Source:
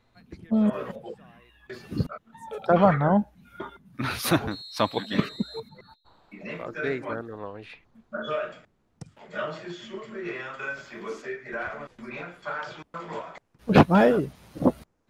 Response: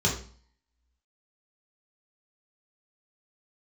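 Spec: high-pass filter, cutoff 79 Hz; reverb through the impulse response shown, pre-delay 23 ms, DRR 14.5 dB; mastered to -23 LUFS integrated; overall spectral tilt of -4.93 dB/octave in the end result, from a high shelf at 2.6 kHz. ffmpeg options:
-filter_complex "[0:a]highpass=79,highshelf=f=2600:g=-7.5,asplit=2[s0][s1];[1:a]atrim=start_sample=2205,adelay=23[s2];[s1][s2]afir=irnorm=-1:irlink=0,volume=0.0501[s3];[s0][s3]amix=inputs=2:normalize=0,volume=1.5"

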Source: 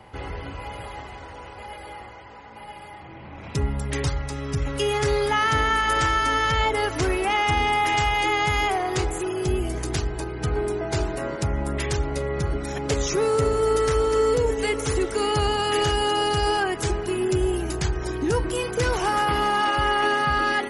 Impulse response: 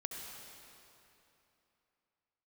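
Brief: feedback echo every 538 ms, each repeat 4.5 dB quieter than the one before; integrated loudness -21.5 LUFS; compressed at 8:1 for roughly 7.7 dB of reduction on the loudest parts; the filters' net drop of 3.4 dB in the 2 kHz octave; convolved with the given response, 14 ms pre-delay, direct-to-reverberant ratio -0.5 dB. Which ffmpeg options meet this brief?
-filter_complex "[0:a]equalizer=f=2000:t=o:g=-4,acompressor=threshold=0.0501:ratio=8,aecho=1:1:538|1076|1614|2152|2690|3228|3766|4304|4842:0.596|0.357|0.214|0.129|0.0772|0.0463|0.0278|0.0167|0.01,asplit=2[s0][s1];[1:a]atrim=start_sample=2205,adelay=14[s2];[s1][s2]afir=irnorm=-1:irlink=0,volume=1.12[s3];[s0][s3]amix=inputs=2:normalize=0,volume=1.5"

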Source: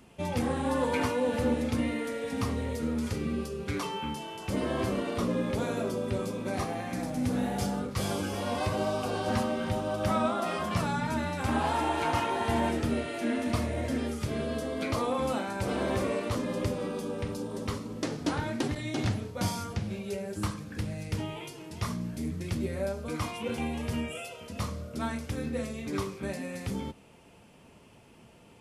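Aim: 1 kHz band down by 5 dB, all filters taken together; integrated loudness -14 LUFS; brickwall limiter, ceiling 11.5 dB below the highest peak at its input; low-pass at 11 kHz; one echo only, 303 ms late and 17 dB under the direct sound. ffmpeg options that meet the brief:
-af "lowpass=11000,equalizer=f=1000:t=o:g=-6.5,alimiter=level_in=1.41:limit=0.0631:level=0:latency=1,volume=0.708,aecho=1:1:303:0.141,volume=12.6"

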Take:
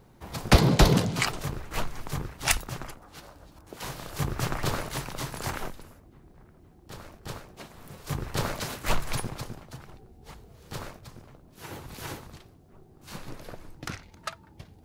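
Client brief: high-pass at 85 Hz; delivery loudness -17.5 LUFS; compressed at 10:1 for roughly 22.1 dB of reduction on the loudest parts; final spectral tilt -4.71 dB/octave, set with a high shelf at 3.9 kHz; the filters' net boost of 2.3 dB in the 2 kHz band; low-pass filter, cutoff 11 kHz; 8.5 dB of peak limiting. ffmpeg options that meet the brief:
-af "highpass=85,lowpass=11000,equalizer=f=2000:t=o:g=4.5,highshelf=f=3900:g=-6.5,acompressor=threshold=0.0141:ratio=10,volume=23.7,alimiter=limit=0.75:level=0:latency=1"

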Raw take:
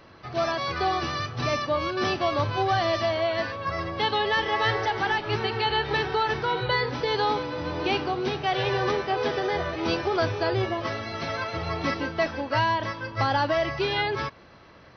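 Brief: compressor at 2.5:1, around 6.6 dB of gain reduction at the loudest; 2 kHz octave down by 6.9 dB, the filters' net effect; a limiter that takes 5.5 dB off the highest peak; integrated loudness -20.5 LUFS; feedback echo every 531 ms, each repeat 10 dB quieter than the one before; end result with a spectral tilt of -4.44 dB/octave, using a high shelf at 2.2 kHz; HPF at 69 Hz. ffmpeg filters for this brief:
-af "highpass=69,equalizer=f=2000:t=o:g=-5,highshelf=f=2200:g=-7,acompressor=threshold=0.0251:ratio=2.5,alimiter=level_in=1.33:limit=0.0631:level=0:latency=1,volume=0.75,aecho=1:1:531|1062|1593|2124:0.316|0.101|0.0324|0.0104,volume=5.31"

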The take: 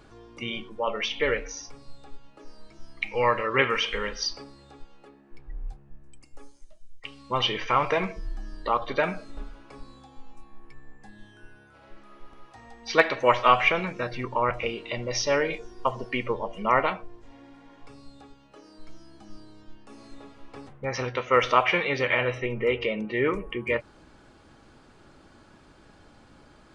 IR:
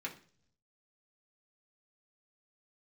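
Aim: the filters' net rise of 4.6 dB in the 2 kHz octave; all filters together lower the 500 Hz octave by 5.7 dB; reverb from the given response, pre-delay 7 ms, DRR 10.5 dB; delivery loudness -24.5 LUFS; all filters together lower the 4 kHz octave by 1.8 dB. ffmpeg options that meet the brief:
-filter_complex "[0:a]equalizer=f=500:t=o:g=-7,equalizer=f=2000:t=o:g=7.5,equalizer=f=4000:t=o:g=-7,asplit=2[s0][s1];[1:a]atrim=start_sample=2205,adelay=7[s2];[s1][s2]afir=irnorm=-1:irlink=0,volume=0.282[s3];[s0][s3]amix=inputs=2:normalize=0"

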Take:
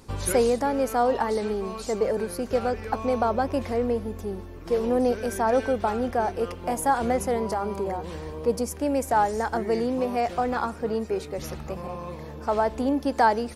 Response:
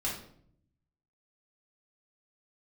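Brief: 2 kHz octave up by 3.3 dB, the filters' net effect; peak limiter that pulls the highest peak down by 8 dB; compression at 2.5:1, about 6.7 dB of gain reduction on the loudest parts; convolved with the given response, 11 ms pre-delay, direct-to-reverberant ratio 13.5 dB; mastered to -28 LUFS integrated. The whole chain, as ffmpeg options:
-filter_complex "[0:a]equalizer=f=2000:t=o:g=4.5,acompressor=threshold=0.0501:ratio=2.5,alimiter=limit=0.0841:level=0:latency=1,asplit=2[s0][s1];[1:a]atrim=start_sample=2205,adelay=11[s2];[s1][s2]afir=irnorm=-1:irlink=0,volume=0.126[s3];[s0][s3]amix=inputs=2:normalize=0,volume=1.5"

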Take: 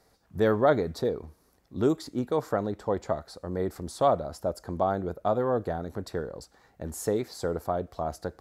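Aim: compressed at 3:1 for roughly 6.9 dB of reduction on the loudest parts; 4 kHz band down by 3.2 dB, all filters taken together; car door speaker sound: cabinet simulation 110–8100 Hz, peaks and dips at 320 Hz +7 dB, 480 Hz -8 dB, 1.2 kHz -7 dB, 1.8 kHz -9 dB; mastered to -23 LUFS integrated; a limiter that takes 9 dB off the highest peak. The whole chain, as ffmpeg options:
-af "equalizer=f=4000:t=o:g=-3.5,acompressor=threshold=0.0501:ratio=3,alimiter=limit=0.0668:level=0:latency=1,highpass=110,equalizer=f=320:t=q:w=4:g=7,equalizer=f=480:t=q:w=4:g=-8,equalizer=f=1200:t=q:w=4:g=-7,equalizer=f=1800:t=q:w=4:g=-9,lowpass=f=8100:w=0.5412,lowpass=f=8100:w=1.3066,volume=4.73"

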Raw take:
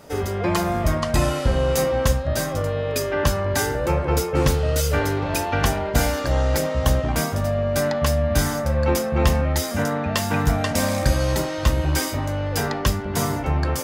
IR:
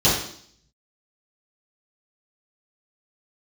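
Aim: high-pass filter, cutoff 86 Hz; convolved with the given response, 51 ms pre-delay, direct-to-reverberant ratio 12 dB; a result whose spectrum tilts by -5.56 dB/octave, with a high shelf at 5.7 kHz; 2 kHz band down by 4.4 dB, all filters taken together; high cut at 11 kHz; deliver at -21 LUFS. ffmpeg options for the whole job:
-filter_complex "[0:a]highpass=86,lowpass=11000,equalizer=f=2000:t=o:g=-5.5,highshelf=f=5700:g=-4.5,asplit=2[s0][s1];[1:a]atrim=start_sample=2205,adelay=51[s2];[s1][s2]afir=irnorm=-1:irlink=0,volume=0.0282[s3];[s0][s3]amix=inputs=2:normalize=0,volume=1.33"

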